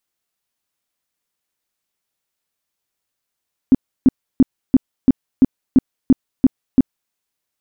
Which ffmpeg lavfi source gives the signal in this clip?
-f lavfi -i "aevalsrc='0.562*sin(2*PI*261*mod(t,0.34))*lt(mod(t,0.34),7/261)':d=3.4:s=44100"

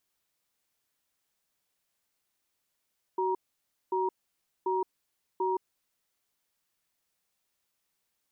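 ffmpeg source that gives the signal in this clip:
-f lavfi -i "aevalsrc='0.0376*(sin(2*PI*375*t)+sin(2*PI*945*t))*clip(min(mod(t,0.74),0.17-mod(t,0.74))/0.005,0,1)':d=2.83:s=44100"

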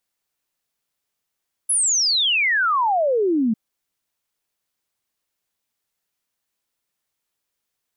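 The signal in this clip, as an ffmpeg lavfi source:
-f lavfi -i "aevalsrc='0.158*clip(min(t,1.85-t)/0.01,0,1)*sin(2*PI*11000*1.85/log(210/11000)*(exp(log(210/11000)*t/1.85)-1))':d=1.85:s=44100"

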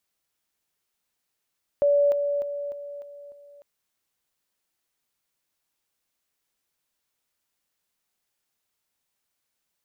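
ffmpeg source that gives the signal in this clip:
-f lavfi -i "aevalsrc='pow(10,(-16.5-6*floor(t/0.3))/20)*sin(2*PI*574*t)':d=1.8:s=44100"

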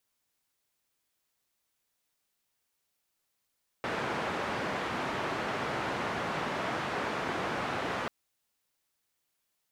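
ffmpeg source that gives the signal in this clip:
-f lavfi -i "anoisesrc=c=white:d=4.24:r=44100:seed=1,highpass=f=110,lowpass=f=1400,volume=-16.8dB"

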